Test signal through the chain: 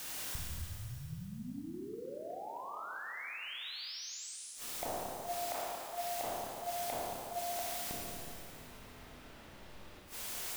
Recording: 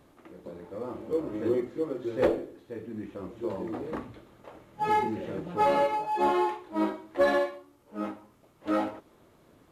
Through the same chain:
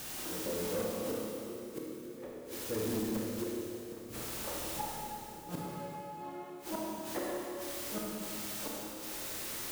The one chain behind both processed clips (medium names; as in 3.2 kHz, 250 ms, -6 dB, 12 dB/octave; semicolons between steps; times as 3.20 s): level-controlled noise filter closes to 2.2 kHz, open at -18.5 dBFS; added noise white -49 dBFS; inverted gate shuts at -27 dBFS, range -28 dB; Schroeder reverb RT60 2.6 s, combs from 25 ms, DRR -2.5 dB; saturation -33.5 dBFS; trim +4.5 dB